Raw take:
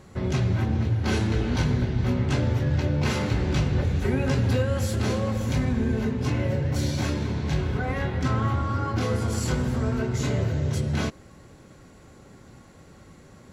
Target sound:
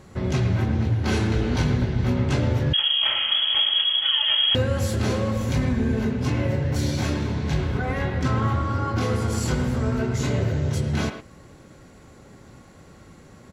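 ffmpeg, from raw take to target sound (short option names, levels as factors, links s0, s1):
-filter_complex "[0:a]asplit=2[s0][s1];[s1]adelay=110,highpass=300,lowpass=3400,asoftclip=type=hard:threshold=0.0708,volume=0.398[s2];[s0][s2]amix=inputs=2:normalize=0,asettb=1/sr,asplit=3[s3][s4][s5];[s3]atrim=end=2.734[s6];[s4]atrim=start=2.73:end=4.55,asetpts=PTS-STARTPTS,afade=t=in:d=0.004:c=qsin,afade=t=out:st=1.816:d=0.004:c=qsin,lowpass=f=2900:t=q:w=0.5098,lowpass=f=2900:t=q:w=0.6013,lowpass=f=2900:t=q:w=0.9,lowpass=f=2900:t=q:w=2.563,afreqshift=-3400[s7];[s5]atrim=start=4.546[s8];[s6][s7]acrossfade=d=0.004:c1=hsin:c2=qsin[s9];[s9][s8]acrossfade=d=0.004:c1=qsin:c2=hsin,volume=1.19"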